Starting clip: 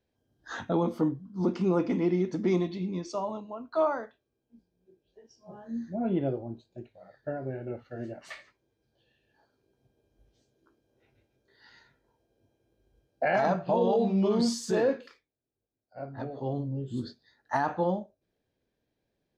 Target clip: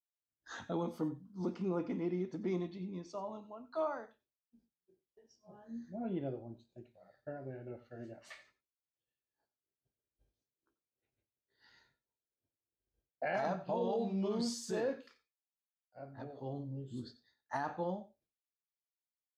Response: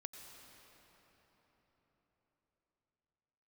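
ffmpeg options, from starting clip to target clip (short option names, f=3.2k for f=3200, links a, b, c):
-filter_complex "[0:a]agate=range=-33dB:threshold=-59dB:ratio=3:detection=peak,asetnsamples=n=441:p=0,asendcmd='1.54 highshelf g -4.5;3.32 highshelf g 4.5',highshelf=f=4.1k:g=8[a];[1:a]atrim=start_sample=2205,atrim=end_sample=4410[b];[a][b]afir=irnorm=-1:irlink=0,volume=-4.5dB"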